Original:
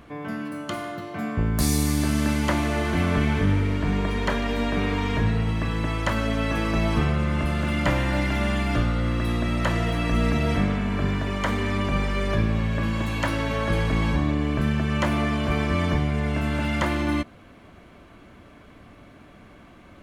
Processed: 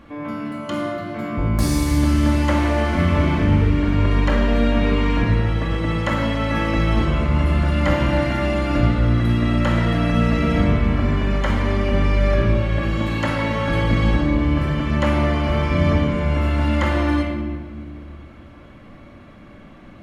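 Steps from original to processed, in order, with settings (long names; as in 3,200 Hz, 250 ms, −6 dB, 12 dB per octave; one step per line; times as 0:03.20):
high-shelf EQ 6,400 Hz −8 dB
convolution reverb RT60 1.6 s, pre-delay 4 ms, DRR −1.5 dB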